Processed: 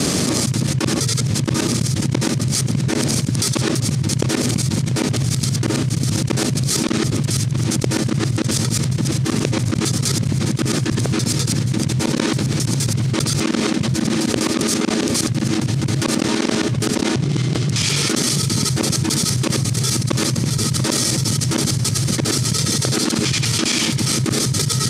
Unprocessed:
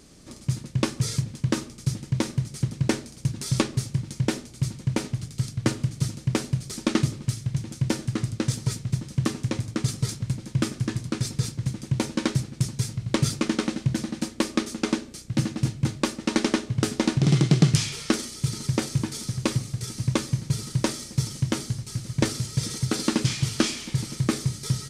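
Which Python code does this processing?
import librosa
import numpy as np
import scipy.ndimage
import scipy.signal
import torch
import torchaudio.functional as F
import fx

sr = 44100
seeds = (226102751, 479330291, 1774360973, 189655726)

p1 = fx.local_reverse(x, sr, ms=67.0)
p2 = scipy.signal.sosfilt(scipy.signal.butter(4, 91.0, 'highpass', fs=sr, output='sos'), p1)
p3 = p2 + fx.echo_single(p2, sr, ms=689, db=-22.0, dry=0)
p4 = fx.env_flatten(p3, sr, amount_pct=100)
y = F.gain(torch.from_numpy(p4), -5.5).numpy()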